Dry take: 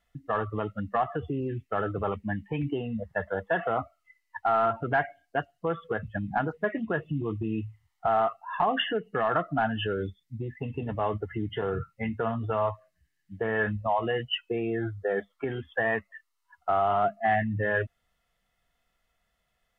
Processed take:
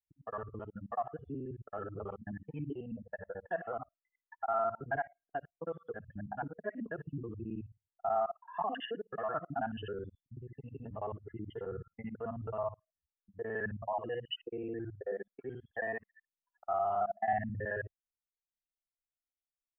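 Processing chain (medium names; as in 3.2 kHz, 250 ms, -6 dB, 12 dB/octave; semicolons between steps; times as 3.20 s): time reversed locally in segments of 54 ms; spectral contrast expander 1.5:1; trim -6 dB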